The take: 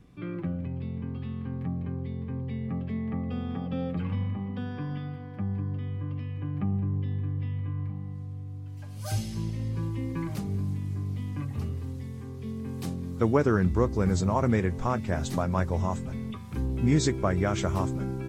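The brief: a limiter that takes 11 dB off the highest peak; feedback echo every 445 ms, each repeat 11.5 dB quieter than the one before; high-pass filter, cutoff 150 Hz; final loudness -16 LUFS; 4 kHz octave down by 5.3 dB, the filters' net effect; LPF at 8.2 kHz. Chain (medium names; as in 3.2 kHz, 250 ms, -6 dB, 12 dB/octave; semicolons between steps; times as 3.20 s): high-pass 150 Hz; low-pass 8.2 kHz; peaking EQ 4 kHz -6.5 dB; peak limiter -20.5 dBFS; feedback delay 445 ms, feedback 27%, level -11.5 dB; trim +18.5 dB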